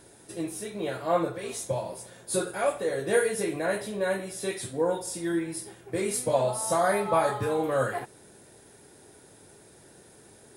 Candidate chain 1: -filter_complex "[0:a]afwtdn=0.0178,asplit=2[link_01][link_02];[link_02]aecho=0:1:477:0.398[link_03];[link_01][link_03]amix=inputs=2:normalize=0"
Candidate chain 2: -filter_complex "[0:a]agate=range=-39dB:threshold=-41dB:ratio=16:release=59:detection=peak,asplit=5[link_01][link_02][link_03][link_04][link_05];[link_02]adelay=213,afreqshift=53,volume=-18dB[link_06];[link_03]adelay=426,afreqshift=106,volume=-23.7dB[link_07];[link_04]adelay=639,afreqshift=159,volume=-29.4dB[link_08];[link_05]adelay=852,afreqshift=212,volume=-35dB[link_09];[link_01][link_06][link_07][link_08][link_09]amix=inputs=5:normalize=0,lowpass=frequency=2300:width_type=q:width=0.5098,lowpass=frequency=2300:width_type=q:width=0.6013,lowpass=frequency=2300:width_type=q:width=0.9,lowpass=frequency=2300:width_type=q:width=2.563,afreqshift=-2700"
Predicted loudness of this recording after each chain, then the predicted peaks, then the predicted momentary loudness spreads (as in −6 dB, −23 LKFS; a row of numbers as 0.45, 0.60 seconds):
−28.5, −26.0 LKFS; −11.0, −11.5 dBFS; 12, 11 LU